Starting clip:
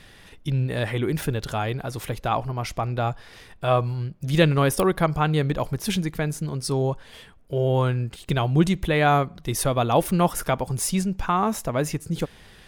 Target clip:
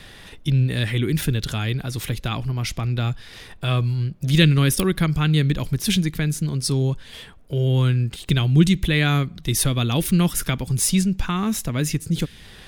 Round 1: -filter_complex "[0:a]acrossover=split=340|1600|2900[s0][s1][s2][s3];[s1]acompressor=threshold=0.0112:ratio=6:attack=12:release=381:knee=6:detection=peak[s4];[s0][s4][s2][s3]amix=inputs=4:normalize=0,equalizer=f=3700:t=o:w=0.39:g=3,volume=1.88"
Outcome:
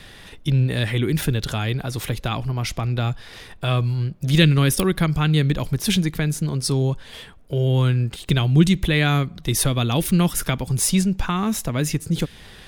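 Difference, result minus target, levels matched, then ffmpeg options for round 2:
compression: peak gain reduction -8 dB
-filter_complex "[0:a]acrossover=split=340|1600|2900[s0][s1][s2][s3];[s1]acompressor=threshold=0.00376:ratio=6:attack=12:release=381:knee=6:detection=peak[s4];[s0][s4][s2][s3]amix=inputs=4:normalize=0,equalizer=f=3700:t=o:w=0.39:g=3,volume=1.88"

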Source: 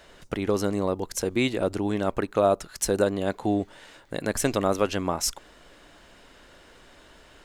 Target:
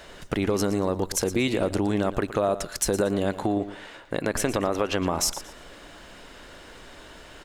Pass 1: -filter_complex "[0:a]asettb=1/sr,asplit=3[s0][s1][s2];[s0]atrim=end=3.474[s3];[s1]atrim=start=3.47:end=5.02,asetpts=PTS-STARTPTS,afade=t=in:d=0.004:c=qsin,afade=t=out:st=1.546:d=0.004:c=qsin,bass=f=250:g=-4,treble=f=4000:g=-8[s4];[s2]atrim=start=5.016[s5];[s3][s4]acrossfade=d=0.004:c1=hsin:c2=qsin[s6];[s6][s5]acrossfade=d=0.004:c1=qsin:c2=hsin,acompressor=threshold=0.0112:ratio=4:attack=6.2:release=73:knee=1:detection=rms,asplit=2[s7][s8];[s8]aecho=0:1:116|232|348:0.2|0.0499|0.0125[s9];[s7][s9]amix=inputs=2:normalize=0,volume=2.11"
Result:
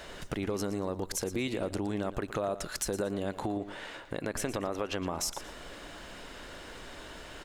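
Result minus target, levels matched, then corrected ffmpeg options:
compression: peak gain reduction +8.5 dB
-filter_complex "[0:a]asettb=1/sr,asplit=3[s0][s1][s2];[s0]atrim=end=3.474[s3];[s1]atrim=start=3.47:end=5.02,asetpts=PTS-STARTPTS,afade=t=in:d=0.004:c=qsin,afade=t=out:st=1.546:d=0.004:c=qsin,bass=f=250:g=-4,treble=f=4000:g=-8[s4];[s2]atrim=start=5.016[s5];[s3][s4]acrossfade=d=0.004:c1=hsin:c2=qsin[s6];[s6][s5]acrossfade=d=0.004:c1=qsin:c2=hsin,acompressor=threshold=0.0422:ratio=4:attack=6.2:release=73:knee=1:detection=rms,asplit=2[s7][s8];[s8]aecho=0:1:116|232|348:0.2|0.0499|0.0125[s9];[s7][s9]amix=inputs=2:normalize=0,volume=2.11"

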